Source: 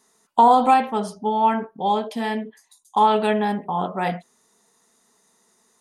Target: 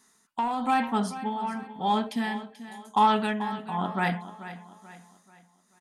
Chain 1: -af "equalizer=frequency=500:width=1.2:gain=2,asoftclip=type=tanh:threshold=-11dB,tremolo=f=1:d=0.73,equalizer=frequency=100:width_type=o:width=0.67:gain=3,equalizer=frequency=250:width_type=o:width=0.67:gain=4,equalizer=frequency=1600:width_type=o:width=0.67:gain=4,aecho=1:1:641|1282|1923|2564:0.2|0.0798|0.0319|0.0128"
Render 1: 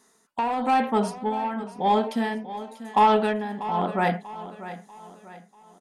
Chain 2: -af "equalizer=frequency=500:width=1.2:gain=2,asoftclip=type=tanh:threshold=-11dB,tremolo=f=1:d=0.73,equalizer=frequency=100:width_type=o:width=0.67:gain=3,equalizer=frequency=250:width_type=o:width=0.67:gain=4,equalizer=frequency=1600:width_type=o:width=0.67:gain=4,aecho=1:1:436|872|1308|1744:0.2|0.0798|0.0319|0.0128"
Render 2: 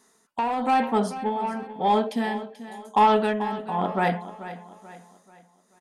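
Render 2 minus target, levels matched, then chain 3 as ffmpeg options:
500 Hz band +5.5 dB
-af "equalizer=frequency=500:width=1.2:gain=-9.5,asoftclip=type=tanh:threshold=-11dB,tremolo=f=1:d=0.73,equalizer=frequency=100:width_type=o:width=0.67:gain=3,equalizer=frequency=250:width_type=o:width=0.67:gain=4,equalizer=frequency=1600:width_type=o:width=0.67:gain=4,aecho=1:1:436|872|1308|1744:0.2|0.0798|0.0319|0.0128"

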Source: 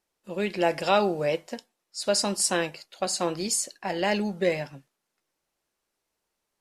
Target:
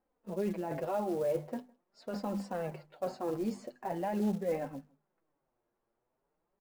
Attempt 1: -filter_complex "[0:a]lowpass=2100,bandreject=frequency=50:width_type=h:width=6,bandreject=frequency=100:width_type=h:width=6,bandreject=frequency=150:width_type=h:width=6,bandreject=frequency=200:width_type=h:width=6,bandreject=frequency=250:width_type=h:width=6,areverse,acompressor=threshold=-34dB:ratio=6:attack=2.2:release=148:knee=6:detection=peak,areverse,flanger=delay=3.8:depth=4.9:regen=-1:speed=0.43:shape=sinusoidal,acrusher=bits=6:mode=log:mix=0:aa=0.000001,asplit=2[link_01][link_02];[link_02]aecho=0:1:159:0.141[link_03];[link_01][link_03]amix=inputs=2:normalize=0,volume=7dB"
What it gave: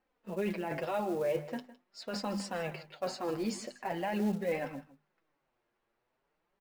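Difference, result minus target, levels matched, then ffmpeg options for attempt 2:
2,000 Hz band +7.5 dB; echo-to-direct +10 dB
-filter_complex "[0:a]lowpass=980,bandreject=frequency=50:width_type=h:width=6,bandreject=frequency=100:width_type=h:width=6,bandreject=frequency=150:width_type=h:width=6,bandreject=frequency=200:width_type=h:width=6,bandreject=frequency=250:width_type=h:width=6,areverse,acompressor=threshold=-34dB:ratio=6:attack=2.2:release=148:knee=6:detection=peak,areverse,flanger=delay=3.8:depth=4.9:regen=-1:speed=0.43:shape=sinusoidal,acrusher=bits=6:mode=log:mix=0:aa=0.000001,asplit=2[link_01][link_02];[link_02]aecho=0:1:159:0.0447[link_03];[link_01][link_03]amix=inputs=2:normalize=0,volume=7dB"

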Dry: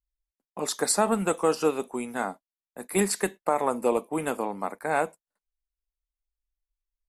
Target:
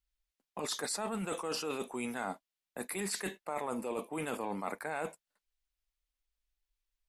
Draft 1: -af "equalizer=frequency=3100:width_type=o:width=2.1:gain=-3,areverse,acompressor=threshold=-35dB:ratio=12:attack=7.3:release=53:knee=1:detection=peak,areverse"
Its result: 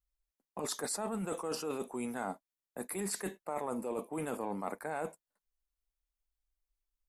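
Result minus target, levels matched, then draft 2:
4,000 Hz band −4.0 dB
-af "equalizer=frequency=3100:width_type=o:width=2.1:gain=6.5,areverse,acompressor=threshold=-35dB:ratio=12:attack=7.3:release=53:knee=1:detection=peak,areverse"

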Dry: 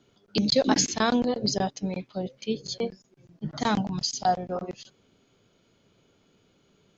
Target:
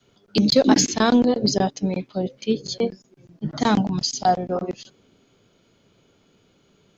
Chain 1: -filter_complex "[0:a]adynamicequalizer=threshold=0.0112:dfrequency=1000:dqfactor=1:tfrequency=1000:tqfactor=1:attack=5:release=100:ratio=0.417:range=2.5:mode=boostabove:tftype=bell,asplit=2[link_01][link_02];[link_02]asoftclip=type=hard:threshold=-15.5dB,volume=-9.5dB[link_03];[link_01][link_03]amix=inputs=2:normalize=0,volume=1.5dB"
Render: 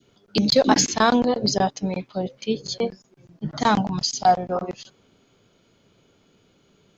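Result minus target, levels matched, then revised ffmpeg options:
1,000 Hz band +3.5 dB
-filter_complex "[0:a]adynamicequalizer=threshold=0.0112:dfrequency=300:dqfactor=1:tfrequency=300:tqfactor=1:attack=5:release=100:ratio=0.417:range=2.5:mode=boostabove:tftype=bell,asplit=2[link_01][link_02];[link_02]asoftclip=type=hard:threshold=-15.5dB,volume=-9.5dB[link_03];[link_01][link_03]amix=inputs=2:normalize=0,volume=1.5dB"

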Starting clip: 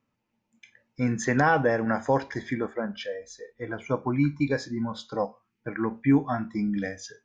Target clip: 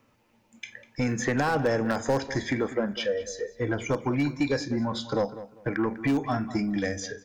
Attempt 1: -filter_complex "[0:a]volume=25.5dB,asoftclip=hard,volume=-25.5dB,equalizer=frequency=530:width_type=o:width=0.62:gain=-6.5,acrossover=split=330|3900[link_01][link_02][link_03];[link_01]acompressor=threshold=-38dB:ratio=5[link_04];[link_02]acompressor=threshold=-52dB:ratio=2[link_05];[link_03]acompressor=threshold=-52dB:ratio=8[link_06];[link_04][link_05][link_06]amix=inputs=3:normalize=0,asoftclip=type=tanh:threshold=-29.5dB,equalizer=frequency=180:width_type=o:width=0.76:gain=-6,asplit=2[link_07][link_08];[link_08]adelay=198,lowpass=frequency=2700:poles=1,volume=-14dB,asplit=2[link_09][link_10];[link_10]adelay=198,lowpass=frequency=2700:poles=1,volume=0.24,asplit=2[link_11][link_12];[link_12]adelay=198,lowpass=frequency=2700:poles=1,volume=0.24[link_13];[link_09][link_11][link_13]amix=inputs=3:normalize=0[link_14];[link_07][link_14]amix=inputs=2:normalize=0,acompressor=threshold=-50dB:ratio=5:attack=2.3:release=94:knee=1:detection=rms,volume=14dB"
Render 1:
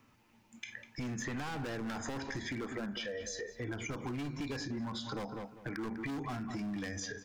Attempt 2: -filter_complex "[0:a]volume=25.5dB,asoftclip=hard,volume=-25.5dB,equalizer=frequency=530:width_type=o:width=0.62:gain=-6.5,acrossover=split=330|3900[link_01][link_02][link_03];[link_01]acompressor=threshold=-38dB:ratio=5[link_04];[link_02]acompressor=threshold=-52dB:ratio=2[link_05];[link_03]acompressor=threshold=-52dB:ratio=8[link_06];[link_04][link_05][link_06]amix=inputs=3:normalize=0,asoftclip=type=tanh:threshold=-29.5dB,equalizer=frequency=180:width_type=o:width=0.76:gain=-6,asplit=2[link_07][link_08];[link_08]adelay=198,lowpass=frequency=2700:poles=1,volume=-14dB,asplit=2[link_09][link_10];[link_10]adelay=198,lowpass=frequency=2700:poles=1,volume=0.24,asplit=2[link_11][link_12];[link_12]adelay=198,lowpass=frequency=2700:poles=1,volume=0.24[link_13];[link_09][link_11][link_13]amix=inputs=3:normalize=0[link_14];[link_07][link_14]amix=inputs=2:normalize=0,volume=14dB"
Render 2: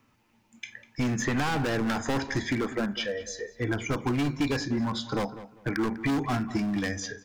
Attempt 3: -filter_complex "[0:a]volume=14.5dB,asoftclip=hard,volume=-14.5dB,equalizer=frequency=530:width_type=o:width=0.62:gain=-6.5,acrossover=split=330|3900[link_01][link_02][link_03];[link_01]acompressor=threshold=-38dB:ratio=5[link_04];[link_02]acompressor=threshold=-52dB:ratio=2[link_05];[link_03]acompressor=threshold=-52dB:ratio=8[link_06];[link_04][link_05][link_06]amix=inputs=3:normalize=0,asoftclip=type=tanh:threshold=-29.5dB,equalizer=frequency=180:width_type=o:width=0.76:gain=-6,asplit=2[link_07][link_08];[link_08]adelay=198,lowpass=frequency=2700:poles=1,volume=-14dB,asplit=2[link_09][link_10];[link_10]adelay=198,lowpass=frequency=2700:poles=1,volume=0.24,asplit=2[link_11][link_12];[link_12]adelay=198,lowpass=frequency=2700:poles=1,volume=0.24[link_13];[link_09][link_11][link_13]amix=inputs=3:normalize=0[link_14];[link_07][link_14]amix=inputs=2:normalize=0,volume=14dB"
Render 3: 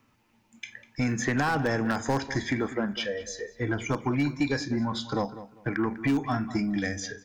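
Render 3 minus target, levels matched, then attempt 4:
500 Hz band −3.5 dB
-filter_complex "[0:a]volume=14.5dB,asoftclip=hard,volume=-14.5dB,equalizer=frequency=530:width_type=o:width=0.62:gain=2.5,acrossover=split=330|3900[link_01][link_02][link_03];[link_01]acompressor=threshold=-38dB:ratio=5[link_04];[link_02]acompressor=threshold=-52dB:ratio=2[link_05];[link_03]acompressor=threshold=-52dB:ratio=8[link_06];[link_04][link_05][link_06]amix=inputs=3:normalize=0,asoftclip=type=tanh:threshold=-29.5dB,equalizer=frequency=180:width_type=o:width=0.76:gain=-6,asplit=2[link_07][link_08];[link_08]adelay=198,lowpass=frequency=2700:poles=1,volume=-14dB,asplit=2[link_09][link_10];[link_10]adelay=198,lowpass=frequency=2700:poles=1,volume=0.24,asplit=2[link_11][link_12];[link_12]adelay=198,lowpass=frequency=2700:poles=1,volume=0.24[link_13];[link_09][link_11][link_13]amix=inputs=3:normalize=0[link_14];[link_07][link_14]amix=inputs=2:normalize=0,volume=14dB"

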